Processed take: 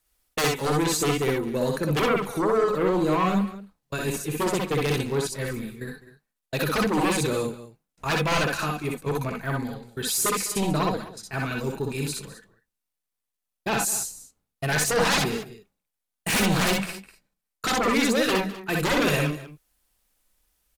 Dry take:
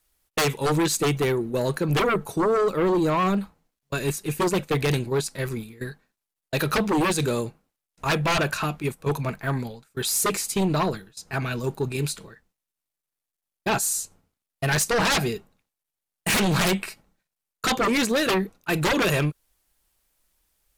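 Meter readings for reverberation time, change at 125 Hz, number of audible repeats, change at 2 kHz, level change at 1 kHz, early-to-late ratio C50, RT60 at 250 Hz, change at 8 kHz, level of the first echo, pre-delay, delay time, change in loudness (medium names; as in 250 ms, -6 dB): no reverb, -2.0 dB, 3, -0.5 dB, -0.5 dB, no reverb, no reverb, -0.5 dB, -1.0 dB, no reverb, 61 ms, -1.0 dB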